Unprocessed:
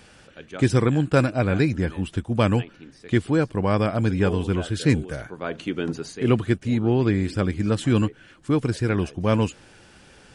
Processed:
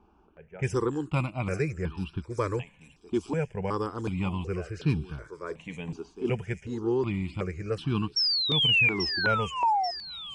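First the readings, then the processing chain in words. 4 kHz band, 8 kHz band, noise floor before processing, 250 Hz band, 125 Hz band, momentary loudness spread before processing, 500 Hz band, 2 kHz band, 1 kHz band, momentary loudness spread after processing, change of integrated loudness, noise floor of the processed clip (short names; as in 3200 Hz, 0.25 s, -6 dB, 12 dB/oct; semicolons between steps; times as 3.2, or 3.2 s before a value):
+9.5 dB, -9.5 dB, -52 dBFS, -10.0 dB, -8.5 dB, 9 LU, -7.0 dB, +1.0 dB, +1.0 dB, 15 LU, -5.0 dB, -61 dBFS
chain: low-pass opened by the level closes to 1100 Hz, open at -16 dBFS; ripple EQ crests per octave 0.77, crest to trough 7 dB; painted sound fall, 8.16–9.91, 680–5600 Hz -16 dBFS; thin delay 0.837 s, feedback 55%, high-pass 5000 Hz, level -5 dB; step phaser 2.7 Hz 520–2000 Hz; gain -5 dB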